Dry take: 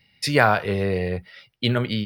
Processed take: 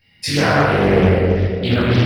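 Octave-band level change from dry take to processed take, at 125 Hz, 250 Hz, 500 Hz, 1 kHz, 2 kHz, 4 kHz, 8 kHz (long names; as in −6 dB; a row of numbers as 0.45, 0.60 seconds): +9.5 dB, +9.0 dB, +7.5 dB, +3.5 dB, +3.5 dB, +4.0 dB, can't be measured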